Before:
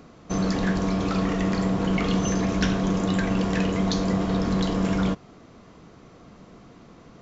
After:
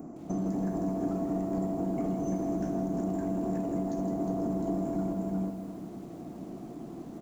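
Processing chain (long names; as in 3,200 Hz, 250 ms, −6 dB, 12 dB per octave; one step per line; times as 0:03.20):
drawn EQ curve 110 Hz 0 dB, 160 Hz +5 dB, 340 Hz +11 dB, 490 Hz −4 dB, 690 Hz +7 dB, 1,100 Hz −7 dB, 2,400 Hz −17 dB, 3,700 Hz −27 dB, 9,200 Hz +8 dB
single-tap delay 360 ms −8.5 dB
brickwall limiter −15 dBFS, peak gain reduction 9.5 dB
downward compressor 2.5 to 1, threshold −32 dBFS, peak gain reduction 9 dB
low-shelf EQ 83 Hz −7.5 dB
hum removal 101.5 Hz, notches 5
on a send at −13 dB: convolution reverb RT60 1.4 s, pre-delay 4 ms
on the sum: feedback echo at a low word length 162 ms, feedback 55%, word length 9 bits, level −9 dB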